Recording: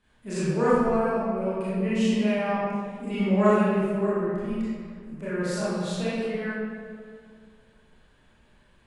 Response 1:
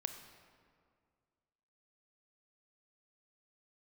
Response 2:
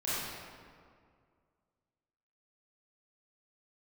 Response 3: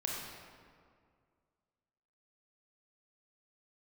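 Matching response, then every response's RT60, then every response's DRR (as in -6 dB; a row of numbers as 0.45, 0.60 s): 2; 2.1, 2.1, 2.1 s; 7.0, -11.5, -3.0 dB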